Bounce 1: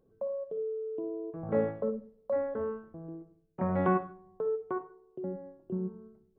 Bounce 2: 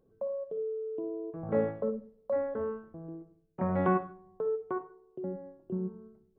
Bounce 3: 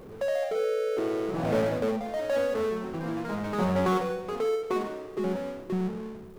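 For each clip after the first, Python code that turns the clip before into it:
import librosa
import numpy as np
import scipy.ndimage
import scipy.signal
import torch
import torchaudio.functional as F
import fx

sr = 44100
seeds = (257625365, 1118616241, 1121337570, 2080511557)

y1 = x
y2 = fx.power_curve(y1, sr, exponent=0.5)
y2 = fx.echo_pitch(y2, sr, ms=92, semitones=2, count=3, db_per_echo=-6.0)
y2 = y2 * 10.0 ** (-3.0 / 20.0)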